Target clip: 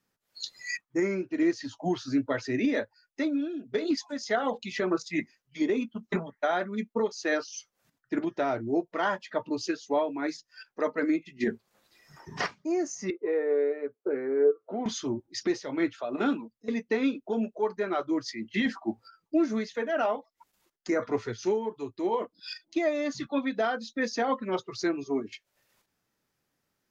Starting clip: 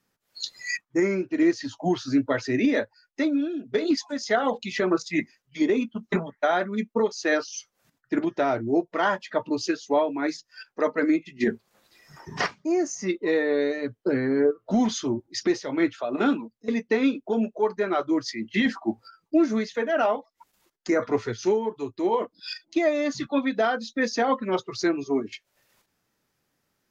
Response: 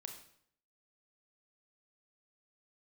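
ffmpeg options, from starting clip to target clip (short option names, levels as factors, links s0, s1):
-filter_complex "[0:a]asettb=1/sr,asplit=3[s0][s1][s2];[s0]atrim=end=13.104[s3];[s1]atrim=start=13.1:end=14.86,asetpts=PTS-STARTPTS,afade=t=in:d=0.004:c=qsin,afade=t=out:st=1.756:d=0.004:c=qsin,highpass=420,equalizer=f=420:t=q:w=4:g=8,equalizer=f=620:t=q:w=4:g=-3,equalizer=f=1000:t=q:w=4:g=-5,equalizer=f=1800:t=q:w=4:g=-7,lowpass=f=2100:w=0.5412,lowpass=f=2100:w=1.3066[s4];[s2]atrim=start=14.856[s5];[s3][s4]acrossfade=d=0.004:c1=hsin:c2=qsin[s6];[s6][s5]acrossfade=d=0.004:c1=qsin:c2=hsin,volume=0.596"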